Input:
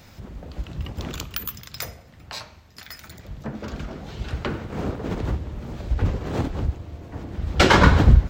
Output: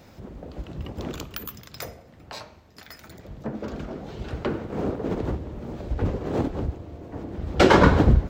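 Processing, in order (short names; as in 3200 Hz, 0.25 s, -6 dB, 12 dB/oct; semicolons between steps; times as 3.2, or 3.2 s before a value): bell 410 Hz +9.5 dB 2.6 oct; gain -6 dB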